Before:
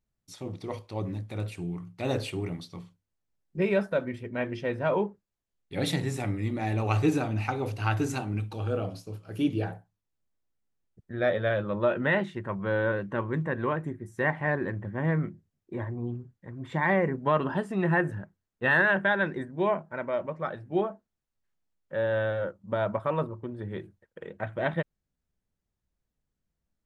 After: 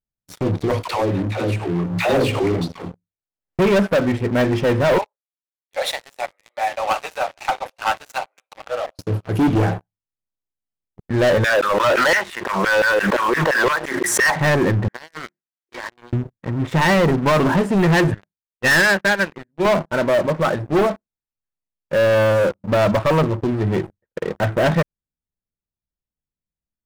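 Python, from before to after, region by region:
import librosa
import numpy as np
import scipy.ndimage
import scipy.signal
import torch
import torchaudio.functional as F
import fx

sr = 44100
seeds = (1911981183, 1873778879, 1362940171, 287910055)

y = fx.chain(x, sr, fx.bass_treble(bass_db=-8, treble_db=-4),
    fx.dispersion(late='lows', ms=114.0, hz=500.0),
    fx.pre_swell(db_per_s=62.0), at=(0.83, 3.59))
y = fx.chain(y, sr, fx.cheby1_highpass(hz=550.0, order=5),
    fx.upward_expand(threshold_db=-42.0, expansion=1.5), at=(4.98, 8.99))
y = fx.chain(y, sr, fx.highpass(hz=120.0, slope=24),
    fx.filter_lfo_highpass(shape='saw_down', hz=5.8, low_hz=420.0, high_hz=2700.0, q=1.5),
    fx.pre_swell(db_per_s=50.0), at=(11.44, 14.36))
y = fx.chain(y, sr, fx.highpass(hz=1300.0, slope=12),
    fx.over_compress(threshold_db=-48.0, ratio=-1.0), at=(14.88, 16.13))
y = fx.chain(y, sr, fx.peak_eq(hz=2400.0, db=11.0, octaves=0.64),
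    fx.upward_expand(threshold_db=-29.0, expansion=2.5), at=(18.14, 19.65))
y = fx.high_shelf(y, sr, hz=2500.0, db=-8.0)
y = fx.leveller(y, sr, passes=5)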